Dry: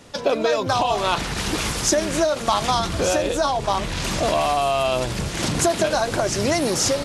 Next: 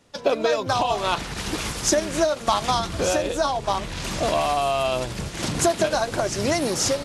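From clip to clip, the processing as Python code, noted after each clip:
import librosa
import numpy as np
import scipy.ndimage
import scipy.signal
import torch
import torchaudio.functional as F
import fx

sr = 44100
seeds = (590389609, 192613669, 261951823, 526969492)

y = fx.upward_expand(x, sr, threshold_db=-41.0, expansion=1.5)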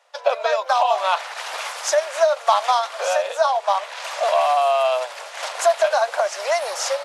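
y = scipy.signal.sosfilt(scipy.signal.butter(8, 570.0, 'highpass', fs=sr, output='sos'), x)
y = fx.high_shelf(y, sr, hz=3000.0, db=-11.0)
y = y * 10.0 ** (6.0 / 20.0)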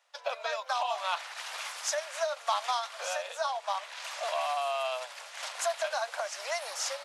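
y = fx.highpass(x, sr, hz=1500.0, slope=6)
y = y * 10.0 ** (-7.0 / 20.0)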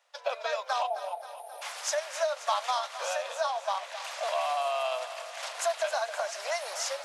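y = fx.spec_box(x, sr, start_s=0.87, length_s=0.75, low_hz=900.0, high_hz=8700.0, gain_db=-28)
y = fx.peak_eq(y, sr, hz=460.0, db=4.0, octaves=1.2)
y = fx.echo_feedback(y, sr, ms=266, feedback_pct=59, wet_db=-12.5)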